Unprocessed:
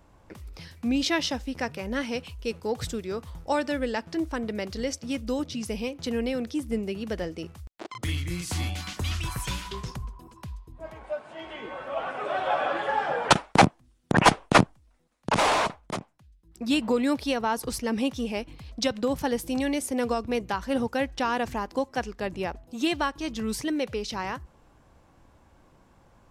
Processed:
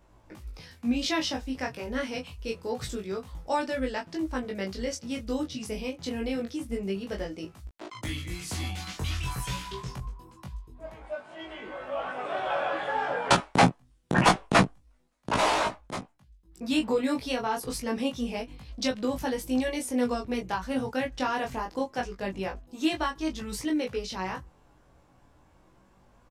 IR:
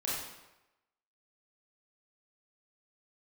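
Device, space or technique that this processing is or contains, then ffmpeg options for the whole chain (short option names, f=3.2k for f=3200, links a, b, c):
double-tracked vocal: -filter_complex "[0:a]asplit=2[a][b];[b]adelay=16,volume=-6dB[c];[a][c]amix=inputs=2:normalize=0,flanger=delay=19:depth=4.2:speed=0.26"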